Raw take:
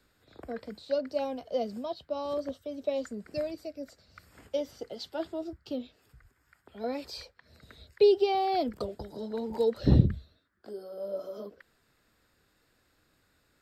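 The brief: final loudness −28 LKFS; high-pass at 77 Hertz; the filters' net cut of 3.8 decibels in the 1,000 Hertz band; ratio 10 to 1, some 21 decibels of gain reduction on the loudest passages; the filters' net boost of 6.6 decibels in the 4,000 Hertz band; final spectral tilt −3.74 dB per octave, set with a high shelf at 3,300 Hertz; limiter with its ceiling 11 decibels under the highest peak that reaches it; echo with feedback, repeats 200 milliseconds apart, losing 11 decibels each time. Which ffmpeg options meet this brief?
ffmpeg -i in.wav -af "highpass=77,equalizer=frequency=1000:width_type=o:gain=-6.5,highshelf=frequency=3300:gain=4.5,equalizer=frequency=4000:width_type=o:gain=5,acompressor=threshold=-37dB:ratio=10,alimiter=level_in=12dB:limit=-24dB:level=0:latency=1,volume=-12dB,aecho=1:1:200|400|600:0.282|0.0789|0.0221,volume=17.5dB" out.wav

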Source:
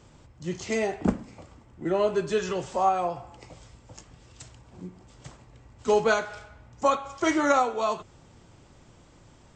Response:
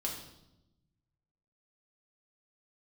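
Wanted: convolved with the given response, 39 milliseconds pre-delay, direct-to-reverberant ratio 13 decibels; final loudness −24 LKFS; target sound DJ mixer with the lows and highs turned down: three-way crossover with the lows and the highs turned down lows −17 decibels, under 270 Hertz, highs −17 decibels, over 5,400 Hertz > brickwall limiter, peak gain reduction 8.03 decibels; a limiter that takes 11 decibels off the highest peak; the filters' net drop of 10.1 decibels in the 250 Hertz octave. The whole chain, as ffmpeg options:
-filter_complex "[0:a]equalizer=frequency=250:width_type=o:gain=-8.5,alimiter=limit=-21.5dB:level=0:latency=1,asplit=2[link_01][link_02];[1:a]atrim=start_sample=2205,adelay=39[link_03];[link_02][link_03]afir=irnorm=-1:irlink=0,volume=-15dB[link_04];[link_01][link_04]amix=inputs=2:normalize=0,acrossover=split=270 5400:gain=0.141 1 0.141[link_05][link_06][link_07];[link_05][link_06][link_07]amix=inputs=3:normalize=0,volume=13.5dB,alimiter=limit=-14dB:level=0:latency=1"

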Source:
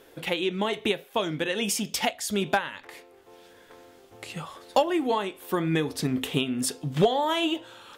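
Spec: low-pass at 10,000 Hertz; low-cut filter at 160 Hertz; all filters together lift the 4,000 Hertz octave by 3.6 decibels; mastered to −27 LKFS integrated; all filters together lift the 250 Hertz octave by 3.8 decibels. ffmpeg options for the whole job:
ffmpeg -i in.wav -af "highpass=160,lowpass=10000,equalizer=frequency=250:width_type=o:gain=6,equalizer=frequency=4000:width_type=o:gain=5,volume=-2dB" out.wav

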